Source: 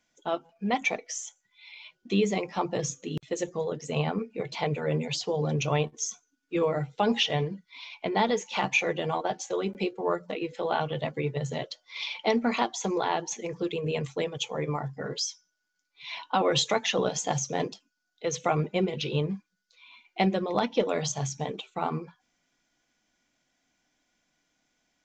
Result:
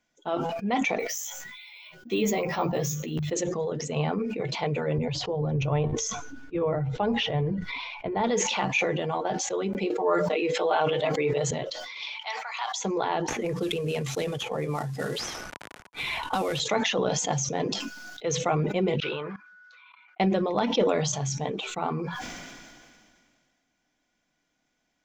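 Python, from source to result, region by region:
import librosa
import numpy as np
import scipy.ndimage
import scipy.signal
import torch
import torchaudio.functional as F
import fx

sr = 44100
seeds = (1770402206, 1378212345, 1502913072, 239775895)

y = fx.chain(x, sr, fx.hum_notches(base_hz=50, count=4),
    fx.doubler(ms=13.0, db=-2.5),
    fx.resample_bad(factor=2, down='none', up='hold'), at=(0.99, 3.31))
y = fx.chain(y, sr, fx.lowpass(hz=1200.0, slope=6),
    fx.low_shelf_res(hz=130.0, db=10.5, q=1.5), at=(4.98, 8.24))
y = fx.chain(y, sr, fx.highpass(hz=380.0, slope=12),
    fx.comb(ms=6.5, depth=0.96),
    fx.env_flatten(amount_pct=50), at=(9.9, 11.51))
y = fx.chain(y, sr, fx.steep_highpass(hz=850.0, slope=36),
    fx.peak_eq(hz=1200.0, db=-3.5, octaves=1.4), at=(12.14, 12.78))
y = fx.chain(y, sr, fx.cvsd(bps=64000),
    fx.notch(hz=990.0, q=17.0),
    fx.band_squash(depth_pct=100), at=(13.28, 16.6))
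y = fx.chain(y, sr, fx.bandpass_q(hz=1400.0, q=7.1),
    fx.level_steps(step_db=23), at=(19.0, 20.2))
y = fx.high_shelf(y, sr, hz=3000.0, db=-5.0)
y = fx.sustainer(y, sr, db_per_s=28.0)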